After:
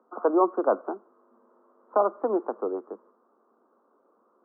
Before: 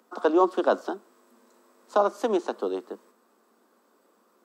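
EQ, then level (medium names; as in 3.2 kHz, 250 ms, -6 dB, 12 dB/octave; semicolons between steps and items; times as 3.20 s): high-pass 250 Hz 12 dB/octave; Chebyshev low-pass 1.3 kHz, order 4; 0.0 dB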